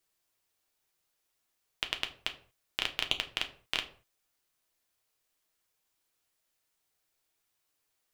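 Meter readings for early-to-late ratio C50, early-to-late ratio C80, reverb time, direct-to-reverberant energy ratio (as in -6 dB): 14.0 dB, 18.0 dB, no single decay rate, 5.0 dB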